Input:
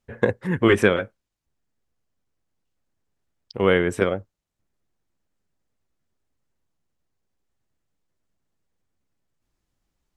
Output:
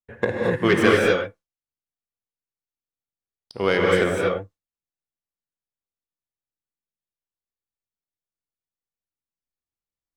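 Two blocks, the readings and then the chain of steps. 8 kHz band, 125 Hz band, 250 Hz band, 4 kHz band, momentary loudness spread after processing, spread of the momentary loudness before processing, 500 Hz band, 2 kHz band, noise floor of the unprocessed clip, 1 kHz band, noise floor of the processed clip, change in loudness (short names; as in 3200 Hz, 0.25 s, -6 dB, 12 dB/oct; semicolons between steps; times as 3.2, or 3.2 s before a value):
+3.0 dB, -1.0 dB, 0.0 dB, +3.5 dB, 10 LU, 15 LU, +1.5 dB, +2.0 dB, -81 dBFS, +3.0 dB, under -85 dBFS, +0.5 dB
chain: tracing distortion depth 0.038 ms; gate with hold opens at -42 dBFS; low shelf 400 Hz -5 dB; non-linear reverb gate 0.27 s rising, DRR -2.5 dB; gain -1 dB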